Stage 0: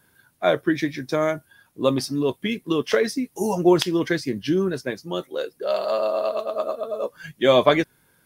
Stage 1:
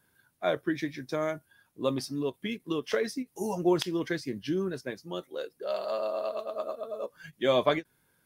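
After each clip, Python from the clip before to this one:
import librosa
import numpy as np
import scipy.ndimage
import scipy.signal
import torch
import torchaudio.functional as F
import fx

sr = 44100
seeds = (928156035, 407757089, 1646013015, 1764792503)

y = fx.end_taper(x, sr, db_per_s=570.0)
y = y * librosa.db_to_amplitude(-8.5)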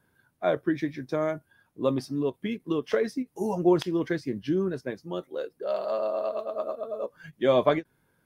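y = fx.high_shelf(x, sr, hz=2100.0, db=-10.5)
y = y * librosa.db_to_amplitude(4.0)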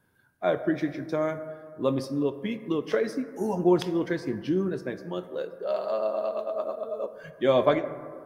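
y = fx.rev_plate(x, sr, seeds[0], rt60_s=2.0, hf_ratio=0.3, predelay_ms=0, drr_db=10.0)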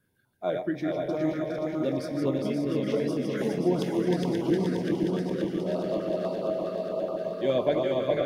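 y = fx.reverse_delay_fb(x, sr, ms=265, feedback_pct=82, wet_db=-4.5)
y = fx.echo_feedback(y, sr, ms=412, feedback_pct=38, wet_db=-3.5)
y = fx.filter_held_notch(y, sr, hz=12.0, low_hz=850.0, high_hz=1800.0)
y = y * librosa.db_to_amplitude(-3.0)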